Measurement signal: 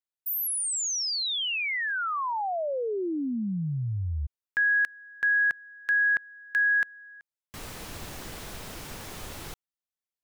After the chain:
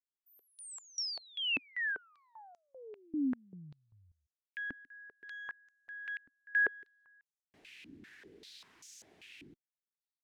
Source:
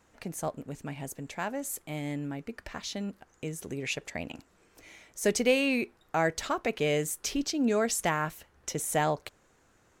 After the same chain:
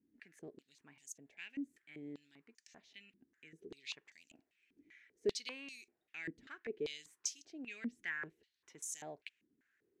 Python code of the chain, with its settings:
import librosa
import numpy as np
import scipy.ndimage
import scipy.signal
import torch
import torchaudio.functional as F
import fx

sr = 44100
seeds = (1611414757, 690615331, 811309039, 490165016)

y = fx.cheby_harmonics(x, sr, harmonics=(6,), levels_db=(-40,), full_scale_db=-12.0)
y = fx.band_shelf(y, sr, hz=820.0, db=-16.0, octaves=1.7)
y = fx.filter_held_bandpass(y, sr, hz=5.1, low_hz=270.0, high_hz=6400.0)
y = y * librosa.db_to_amplitude(-1.0)